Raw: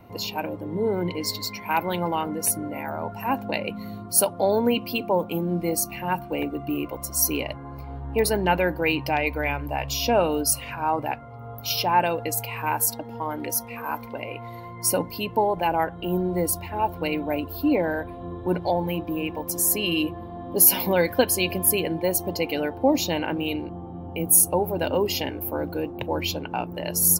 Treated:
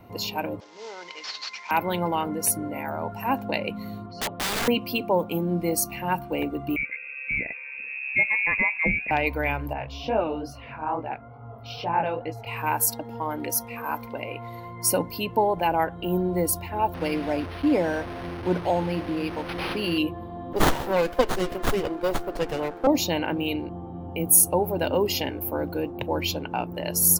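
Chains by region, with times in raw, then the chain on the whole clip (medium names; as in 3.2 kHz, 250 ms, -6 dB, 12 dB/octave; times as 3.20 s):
0.60–1.71 s: CVSD coder 32 kbps + high-pass 1.1 kHz
4.06–4.68 s: steep low-pass 3.7 kHz + hum notches 60/120/180/240/300/360/420/480/540 Hz + integer overflow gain 22.5 dB
6.76–9.11 s: high-order bell 1 kHz -10 dB 1.3 oct + frequency inversion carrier 2.6 kHz
9.73–12.47 s: chorus 2.3 Hz, delay 18 ms, depth 7.9 ms + distance through air 300 m
16.94–19.98 s: one-bit delta coder 64 kbps, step -28.5 dBFS + peaking EQ 3.3 kHz -2.5 dB 0.42 oct + decimation joined by straight lines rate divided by 6×
20.53–22.87 s: high-pass 310 Hz 24 dB/octave + sliding maximum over 17 samples
whole clip: none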